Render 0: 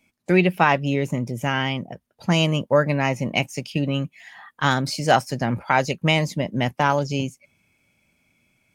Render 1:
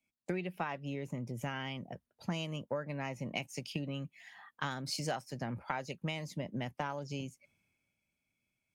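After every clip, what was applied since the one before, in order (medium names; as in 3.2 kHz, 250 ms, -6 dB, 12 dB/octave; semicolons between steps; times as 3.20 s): compression 12:1, threshold -28 dBFS, peak gain reduction 17.5 dB; three bands expanded up and down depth 40%; trim -6 dB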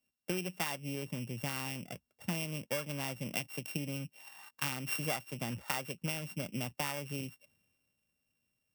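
sorted samples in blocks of 16 samples; treble shelf 12 kHz +9.5 dB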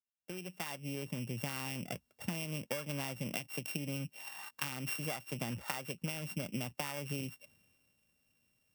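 fade-in on the opening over 1.81 s; compression, threshold -41 dBFS, peak gain reduction 11.5 dB; trim +6 dB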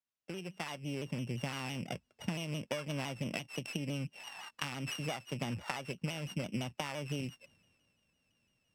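distance through air 65 m; vibrato with a chosen wave saw down 5.9 Hz, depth 100 cents; trim +2 dB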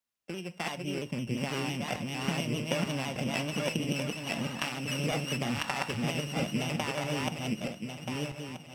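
backward echo that repeats 640 ms, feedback 49%, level -0.5 dB; on a send at -11.5 dB: reverberation, pre-delay 3 ms; on the sum: trim +4 dB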